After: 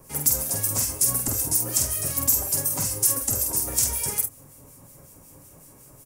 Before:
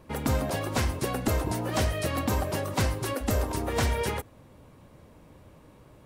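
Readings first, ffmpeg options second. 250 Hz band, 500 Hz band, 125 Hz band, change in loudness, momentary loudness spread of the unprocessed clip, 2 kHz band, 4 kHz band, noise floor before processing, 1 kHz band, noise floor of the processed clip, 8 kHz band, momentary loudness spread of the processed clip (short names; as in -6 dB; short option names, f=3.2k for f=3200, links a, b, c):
-6.5 dB, -8.0 dB, -5.0 dB, +7.0 dB, 3 LU, -7.5 dB, +2.5 dB, -54 dBFS, -7.5 dB, -50 dBFS, +17.5 dB, 3 LU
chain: -filter_complex "[0:a]acrossover=split=180|2800[a][b][c];[a]acompressor=threshold=-34dB:ratio=4[d];[b]acompressor=threshold=-38dB:ratio=4[e];[c]acompressor=threshold=-39dB:ratio=4[f];[d][e][f]amix=inputs=3:normalize=0,aecho=1:1:7.3:0.35,aexciter=amount=10.5:drive=5.1:freq=5.5k,acrossover=split=2000[g][h];[g]aeval=exprs='val(0)*(1-0.7/2+0.7/2*cos(2*PI*5.4*n/s))':c=same[i];[h]aeval=exprs='val(0)*(1-0.7/2-0.7/2*cos(2*PI*5.4*n/s))':c=same[j];[i][j]amix=inputs=2:normalize=0,asplit=2[k][l];[l]aecho=0:1:48|76:0.596|0.158[m];[k][m]amix=inputs=2:normalize=0,volume=1.5dB"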